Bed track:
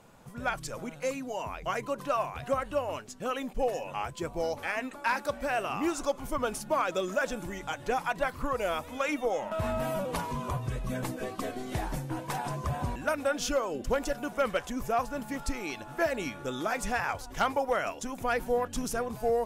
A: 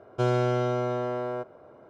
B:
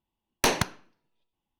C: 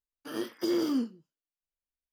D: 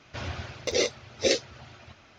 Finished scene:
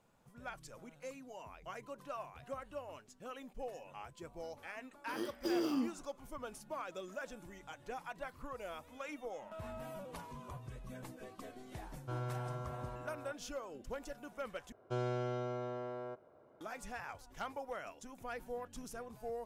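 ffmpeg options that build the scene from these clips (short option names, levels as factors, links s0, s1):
-filter_complex "[1:a]asplit=2[s0][s1];[0:a]volume=0.178[s2];[s0]firequalizer=gain_entry='entry(120,0);entry(280,-12);entry(1200,-1);entry(2000,-8)':delay=0.05:min_phase=1[s3];[s2]asplit=2[s4][s5];[s4]atrim=end=14.724[s6];[s1]atrim=end=1.89,asetpts=PTS-STARTPTS,volume=0.237[s7];[s5]atrim=start=16.606[s8];[3:a]atrim=end=2.12,asetpts=PTS-STARTPTS,volume=0.473,afade=t=in:d=0.004:c=hsin,afade=t=out:st=2.116:d=0.004:c=hsin,adelay=4820[s9];[s3]atrim=end=1.89,asetpts=PTS-STARTPTS,volume=0.266,afade=t=in:d=0.004:c=hsin,afade=t=out:st=1.886:d=0.004:c=hsin,adelay=11890[s10];[s6][s7]acrossfade=d=0.004:c1=hsin:c2=hsin[s11];[s11][s8]acrossfade=d=0.004:c1=hsin:c2=hsin[s12];[s12][s9][s10]amix=inputs=3:normalize=0"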